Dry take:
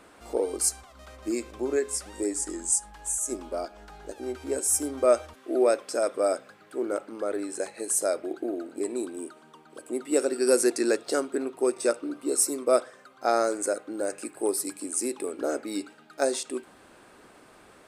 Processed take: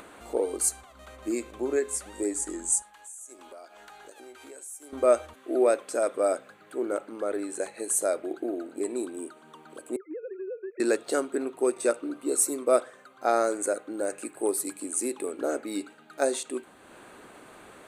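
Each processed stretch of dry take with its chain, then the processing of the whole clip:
2.82–4.93 s: high-pass 1.1 kHz 6 dB/octave + compression 2.5:1, threshold -47 dBFS
9.96–10.80 s: formants replaced by sine waves + rippled Chebyshev low-pass 2.5 kHz, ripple 6 dB + compression, threshold -34 dBFS
whole clip: peaking EQ 5.2 kHz -12.5 dB 0.23 oct; upward compressor, threshold -42 dBFS; bass shelf 90 Hz -5 dB

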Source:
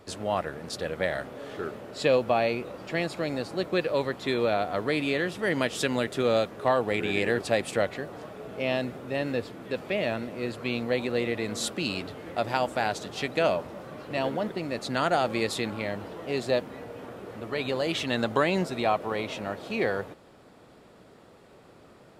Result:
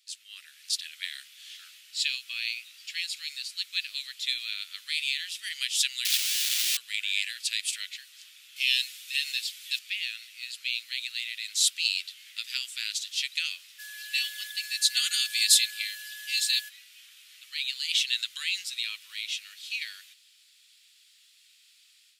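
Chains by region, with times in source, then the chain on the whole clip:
6.05–6.77 s: one-bit delta coder 32 kbps, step -32 dBFS + Schmitt trigger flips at -37 dBFS
8.56–9.79 s: treble shelf 2.4 kHz +9.5 dB + comb 6.1 ms, depth 42%
13.78–16.68 s: treble shelf 6.3 kHz +11.5 dB + comb 3.4 ms, depth 82% + whistle 1.7 kHz -31 dBFS
whole clip: inverse Chebyshev high-pass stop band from 860 Hz, stop band 60 dB; level rider gain up to 9 dB

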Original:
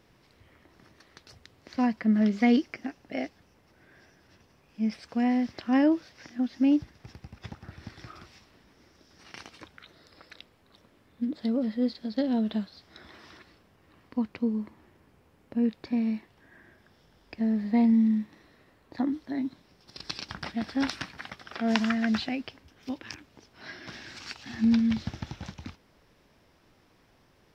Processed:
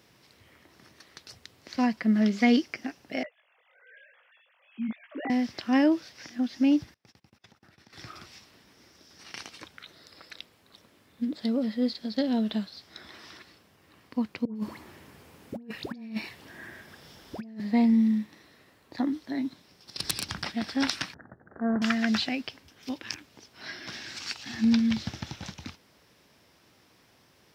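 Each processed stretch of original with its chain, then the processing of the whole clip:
3.23–5.30 s: formants replaced by sine waves + chorus 1.1 Hz, delay 18 ms, depth 4.1 ms + tape noise reduction on one side only encoder only
6.94–7.93 s: gate -50 dBFS, range -27 dB + high-pass 170 Hz 6 dB/octave + compression 8:1, threshold -54 dBFS
14.45–17.60 s: phase dispersion highs, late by 108 ms, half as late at 1.1 kHz + compressor with a negative ratio -34 dBFS, ratio -0.5
19.99–20.42 s: self-modulated delay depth 0.1 ms + bass shelf 180 Hz +9.5 dB + three bands compressed up and down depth 70%
21.14–21.82 s: median filter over 41 samples + steep low-pass 1.8 kHz 72 dB/octave
whole clip: high-pass 82 Hz; treble shelf 2.6 kHz +8.5 dB

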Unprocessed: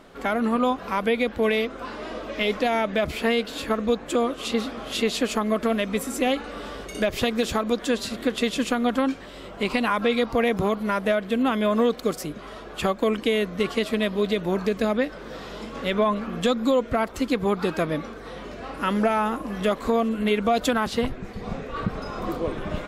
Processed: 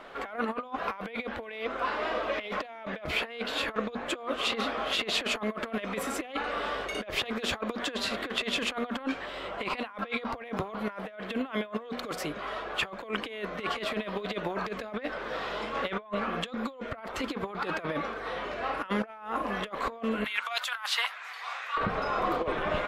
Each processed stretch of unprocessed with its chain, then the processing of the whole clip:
20.24–21.77 s: high-pass 990 Hz 24 dB/octave + treble shelf 4.7 kHz +10 dB
whole clip: three-band isolator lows -13 dB, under 510 Hz, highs -14 dB, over 3.6 kHz; hum notches 60/120/180/240 Hz; compressor with a negative ratio -33 dBFS, ratio -0.5; trim +1.5 dB

